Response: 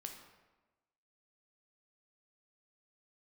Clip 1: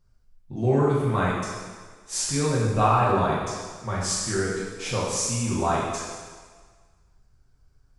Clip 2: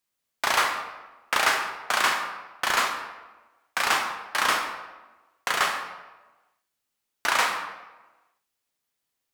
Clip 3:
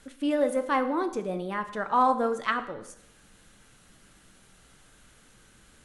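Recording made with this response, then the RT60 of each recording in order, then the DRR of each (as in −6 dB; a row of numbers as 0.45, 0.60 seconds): 2; 1.6, 1.2, 0.75 seconds; −7.0, 3.0, 8.5 decibels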